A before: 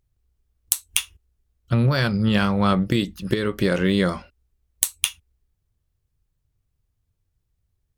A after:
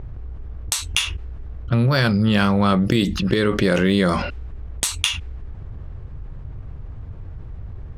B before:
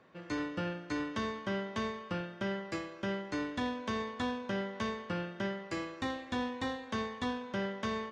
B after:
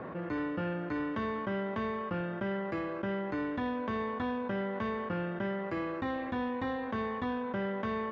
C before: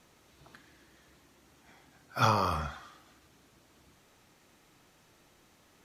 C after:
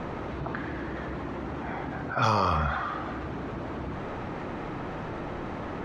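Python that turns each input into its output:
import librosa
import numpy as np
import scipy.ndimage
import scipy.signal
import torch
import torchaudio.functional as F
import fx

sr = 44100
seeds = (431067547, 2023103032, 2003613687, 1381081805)

y = fx.env_lowpass(x, sr, base_hz=1300.0, full_db=-17.5)
y = fx.env_flatten(y, sr, amount_pct=70)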